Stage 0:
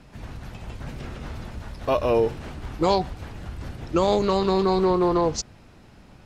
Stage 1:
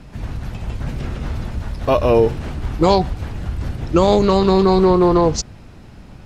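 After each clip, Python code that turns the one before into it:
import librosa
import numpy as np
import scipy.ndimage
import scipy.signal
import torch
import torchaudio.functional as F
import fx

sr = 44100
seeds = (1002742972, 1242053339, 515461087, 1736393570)

y = fx.low_shelf(x, sr, hz=220.0, db=6.5)
y = F.gain(torch.from_numpy(y), 5.5).numpy()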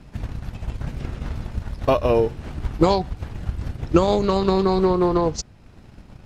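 y = fx.transient(x, sr, attack_db=7, sustain_db=-4)
y = F.gain(torch.from_numpy(y), -6.0).numpy()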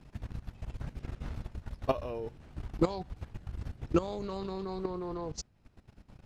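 y = fx.level_steps(x, sr, step_db=15)
y = F.gain(torch.from_numpy(y), -7.0).numpy()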